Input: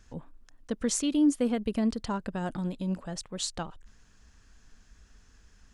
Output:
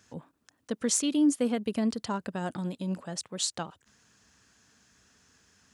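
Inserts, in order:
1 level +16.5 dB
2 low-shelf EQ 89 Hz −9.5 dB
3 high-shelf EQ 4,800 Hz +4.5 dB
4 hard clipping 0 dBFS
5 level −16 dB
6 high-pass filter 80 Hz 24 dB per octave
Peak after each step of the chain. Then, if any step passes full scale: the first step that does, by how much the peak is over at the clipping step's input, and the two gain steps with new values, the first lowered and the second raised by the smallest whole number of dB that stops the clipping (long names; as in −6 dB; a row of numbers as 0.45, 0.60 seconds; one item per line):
+2.0, +2.0, +5.0, 0.0, −16.0, −16.0 dBFS
step 1, 5.0 dB
step 1 +11.5 dB, step 5 −11 dB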